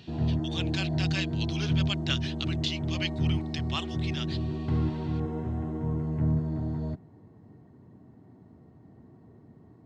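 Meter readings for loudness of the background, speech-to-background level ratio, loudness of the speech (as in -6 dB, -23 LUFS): -30.5 LUFS, -4.5 dB, -35.0 LUFS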